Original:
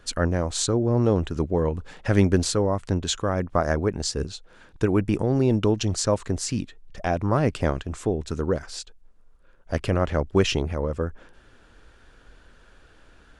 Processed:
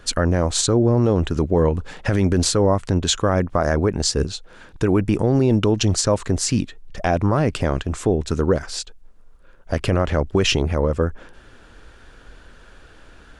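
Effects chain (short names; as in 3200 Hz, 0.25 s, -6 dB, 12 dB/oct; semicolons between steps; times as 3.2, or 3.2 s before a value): limiter -14.5 dBFS, peak gain reduction 10 dB; gain +7 dB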